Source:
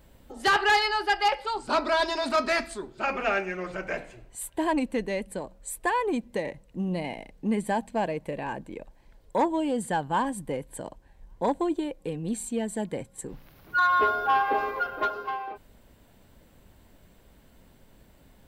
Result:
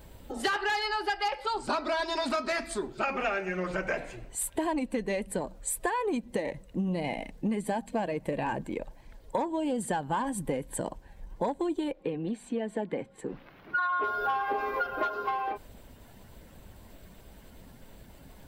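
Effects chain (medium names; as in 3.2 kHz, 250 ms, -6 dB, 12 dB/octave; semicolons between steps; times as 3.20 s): coarse spectral quantiser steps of 15 dB; compression 12:1, threshold -32 dBFS, peak gain reduction 14 dB; 11.92–14.04 s: three-band isolator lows -13 dB, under 190 Hz, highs -21 dB, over 3.7 kHz; trim +5.5 dB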